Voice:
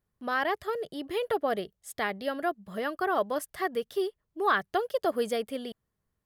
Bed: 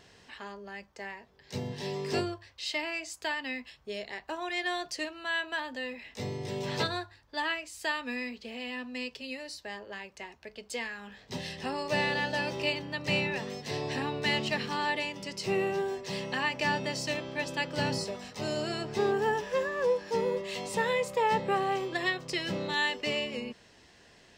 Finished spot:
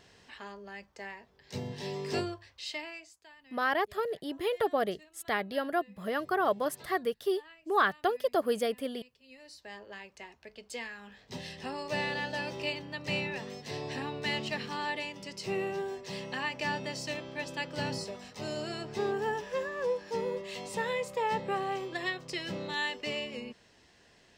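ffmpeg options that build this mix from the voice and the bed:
-filter_complex "[0:a]adelay=3300,volume=-0.5dB[a];[1:a]volume=16.5dB,afade=t=out:st=2.5:d=0.7:silence=0.0944061,afade=t=in:st=9.21:d=0.6:silence=0.11885[b];[a][b]amix=inputs=2:normalize=0"

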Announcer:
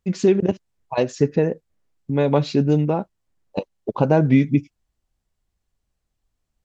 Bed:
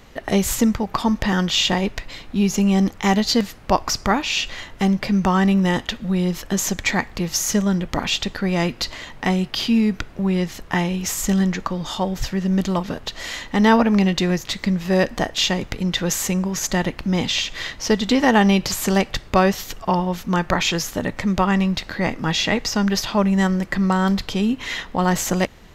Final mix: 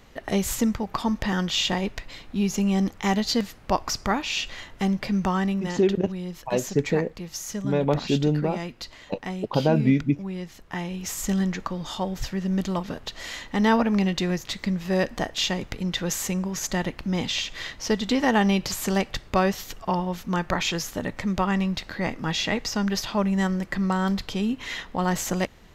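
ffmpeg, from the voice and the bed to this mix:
-filter_complex "[0:a]adelay=5550,volume=-4.5dB[a];[1:a]volume=1.5dB,afade=t=out:st=5.23:d=0.52:silence=0.446684,afade=t=in:st=10.64:d=0.67:silence=0.446684[b];[a][b]amix=inputs=2:normalize=0"

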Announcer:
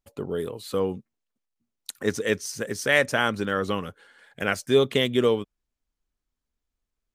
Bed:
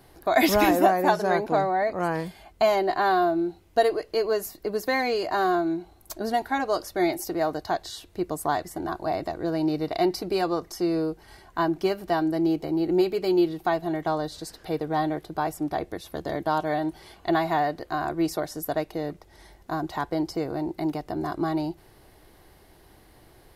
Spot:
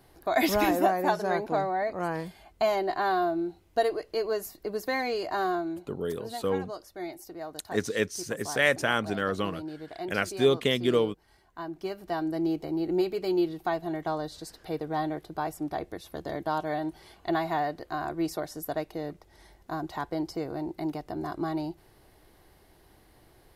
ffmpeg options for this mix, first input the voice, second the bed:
-filter_complex "[0:a]adelay=5700,volume=-3dB[a];[1:a]volume=4.5dB,afade=t=out:st=5.41:d=0.69:silence=0.354813,afade=t=in:st=11.64:d=0.75:silence=0.354813[b];[a][b]amix=inputs=2:normalize=0"

